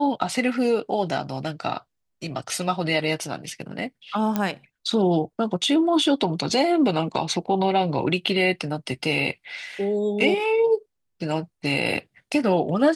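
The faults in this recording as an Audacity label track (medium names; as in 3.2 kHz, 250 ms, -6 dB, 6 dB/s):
4.360000	4.360000	pop -10 dBFS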